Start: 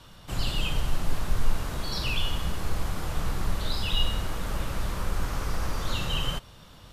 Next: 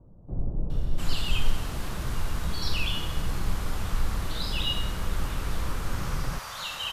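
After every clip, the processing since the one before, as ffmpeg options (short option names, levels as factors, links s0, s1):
-filter_complex "[0:a]acrossover=split=620[s0][s1];[s1]adelay=700[s2];[s0][s2]amix=inputs=2:normalize=0"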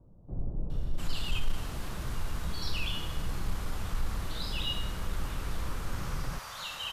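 -af "asoftclip=type=tanh:threshold=0.237,volume=0.596"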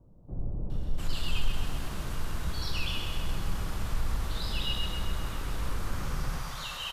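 -af "aecho=1:1:131|262|393|524|655|786|917|1048:0.501|0.296|0.174|0.103|0.0607|0.0358|0.0211|0.0125"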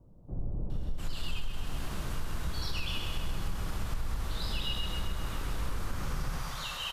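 -af "acompressor=threshold=0.0447:ratio=6"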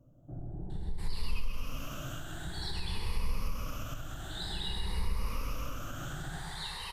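-af "afftfilt=real='re*pow(10,14/40*sin(2*PI*(0.88*log(max(b,1)*sr/1024/100)/log(2)-(0.52)*(pts-256)/sr)))':imag='im*pow(10,14/40*sin(2*PI*(0.88*log(max(b,1)*sr/1024/100)/log(2)-(0.52)*(pts-256)/sr)))':win_size=1024:overlap=0.75,volume=0.631"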